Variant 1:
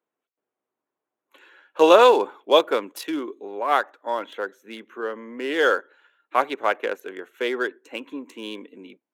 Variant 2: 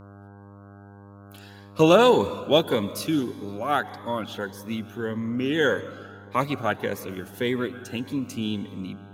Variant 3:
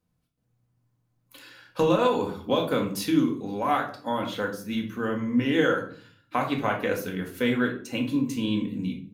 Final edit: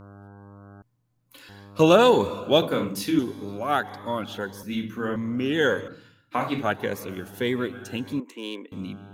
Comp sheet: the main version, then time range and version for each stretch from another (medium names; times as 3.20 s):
2
0.82–1.49 s: from 3
2.62–3.19 s: from 3
4.63–5.16 s: from 3
5.88–6.63 s: from 3
8.20–8.72 s: from 1